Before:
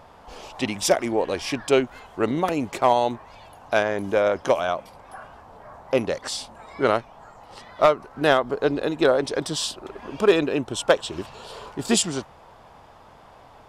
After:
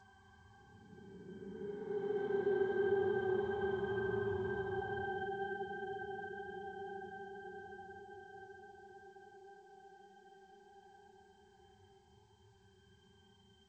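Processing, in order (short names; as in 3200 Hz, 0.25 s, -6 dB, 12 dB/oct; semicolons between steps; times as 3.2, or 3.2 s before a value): tracing distortion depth 0.15 ms; requantised 6-bit, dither triangular; reverb removal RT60 0.85 s; octave resonator G, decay 0.64 s; Paulstretch 23×, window 0.05 s, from 6.75; thirty-one-band EQ 315 Hz -5 dB, 500 Hz -12 dB, 1000 Hz +6 dB; low-pass opened by the level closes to 1500 Hz, open at -36 dBFS; gain +3.5 dB; G.722 64 kbps 16000 Hz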